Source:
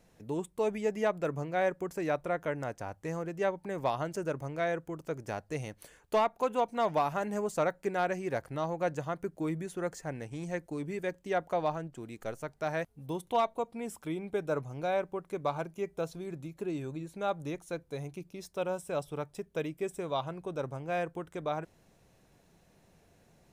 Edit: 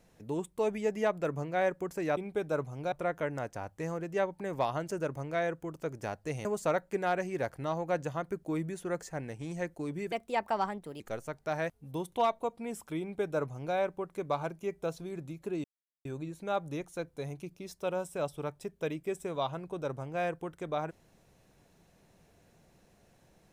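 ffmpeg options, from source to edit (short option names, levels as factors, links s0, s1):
-filter_complex "[0:a]asplit=7[s0][s1][s2][s3][s4][s5][s6];[s0]atrim=end=2.172[s7];[s1]atrim=start=14.148:end=14.902[s8];[s2]atrim=start=2.168:end=5.702[s9];[s3]atrim=start=7.368:end=11.044[s10];[s4]atrim=start=11.04:end=12.15,asetpts=PTS-STARTPTS,asetrate=55566,aresample=44100[s11];[s5]atrim=start=12.146:end=16.79,asetpts=PTS-STARTPTS,afade=t=out:st=4.64:d=0.004:c=hsin,apad=pad_dur=0.41[s12];[s6]atrim=start=16.79,asetpts=PTS-STARTPTS,afade=t=in:d=0.004:c=hsin[s13];[s7][s8]acrossfade=d=0.004:c1=hsin:c2=hsin[s14];[s14][s9]acrossfade=d=0.004:c1=hsin:c2=hsin[s15];[s15][s10]acrossfade=d=0.004:c1=hsin:c2=hsin[s16];[s16][s11]acrossfade=d=0.004:c1=hsin:c2=hsin[s17];[s12][s13]concat=n=2:v=0:a=1[s18];[s17][s18]acrossfade=d=0.004:c1=hsin:c2=hsin"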